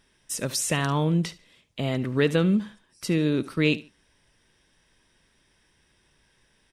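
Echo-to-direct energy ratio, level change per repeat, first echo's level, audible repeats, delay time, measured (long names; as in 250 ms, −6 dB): −18.0 dB, −11.5 dB, −18.5 dB, 2, 72 ms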